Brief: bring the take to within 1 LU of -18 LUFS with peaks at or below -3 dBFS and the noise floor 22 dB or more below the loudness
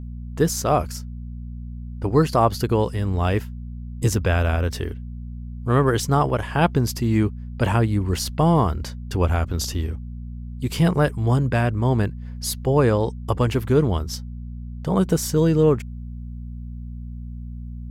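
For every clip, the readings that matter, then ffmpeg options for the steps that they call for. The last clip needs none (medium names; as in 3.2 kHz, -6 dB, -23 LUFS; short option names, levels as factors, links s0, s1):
hum 60 Hz; highest harmonic 240 Hz; hum level -30 dBFS; loudness -22.0 LUFS; peak level -4.5 dBFS; loudness target -18.0 LUFS
-> -af "bandreject=f=60:t=h:w=4,bandreject=f=120:t=h:w=4,bandreject=f=180:t=h:w=4,bandreject=f=240:t=h:w=4"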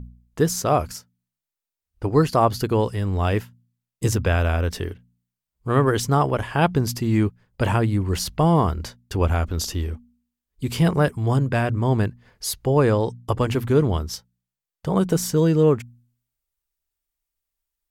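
hum not found; loudness -22.0 LUFS; peak level -5.0 dBFS; loudness target -18.0 LUFS
-> -af "volume=1.58,alimiter=limit=0.708:level=0:latency=1"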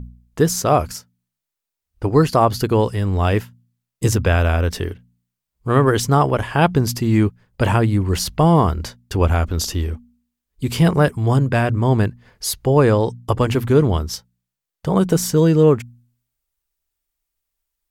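loudness -18.0 LUFS; peak level -3.0 dBFS; noise floor -84 dBFS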